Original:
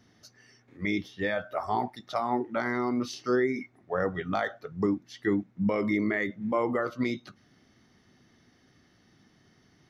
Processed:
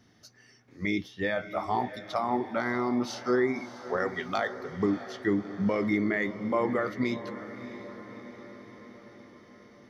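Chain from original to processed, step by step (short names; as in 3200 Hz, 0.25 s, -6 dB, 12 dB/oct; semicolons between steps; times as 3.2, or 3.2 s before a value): 3.97–4.38 tilt +3 dB/oct; on a send: diffused feedback echo 0.632 s, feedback 61%, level -13 dB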